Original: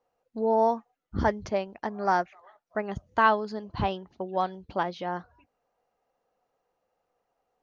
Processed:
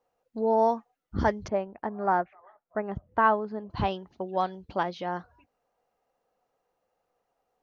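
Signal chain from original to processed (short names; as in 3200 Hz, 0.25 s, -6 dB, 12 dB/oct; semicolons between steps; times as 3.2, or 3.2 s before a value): 1.48–3.7 LPF 1600 Hz 12 dB/oct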